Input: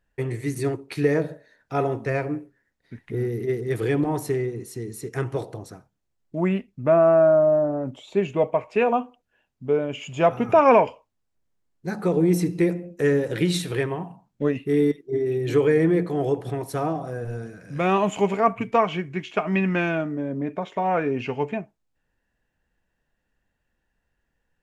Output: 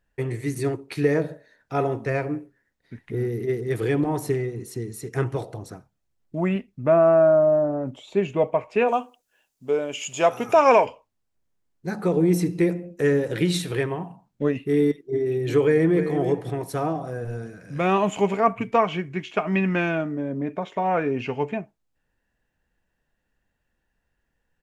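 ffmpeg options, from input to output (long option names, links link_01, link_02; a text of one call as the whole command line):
ffmpeg -i in.wav -filter_complex "[0:a]asettb=1/sr,asplit=3[link_01][link_02][link_03];[link_01]atrim=end=4.234[link_04];[link_02]atrim=start=4.23:end=6.56,asetpts=PTS-STARTPTS,afade=type=in:duration=0.004:curve=qsin,afade=type=out:start_time=2.326:duration=0.004:curve=qsin,aphaser=in_gain=1:out_gain=1:delay=1.6:decay=0.27:speed=2:type=sinusoidal[link_05];[link_03]atrim=start=6.556[link_06];[link_04][link_05]acrossfade=duration=0.004:curve1=hsin:curve2=qsin[link_07];[link_07][link_06]acrossfade=duration=0.004:curve1=qsin:curve2=hsin,asplit=3[link_08][link_09][link_10];[link_08]afade=type=out:start_time=8.87:duration=0.02[link_11];[link_09]bass=frequency=250:gain=-11,treble=frequency=4000:gain=15,afade=type=in:start_time=8.87:duration=0.02,afade=type=out:start_time=10.84:duration=0.02[link_12];[link_10]afade=type=in:start_time=10.84:duration=0.02[link_13];[link_11][link_12][link_13]amix=inputs=3:normalize=0,asplit=2[link_14][link_15];[link_15]afade=type=in:start_time=15.63:duration=0.01,afade=type=out:start_time=16.06:duration=0.01,aecho=0:1:320|640:0.334965|0.0502448[link_16];[link_14][link_16]amix=inputs=2:normalize=0" out.wav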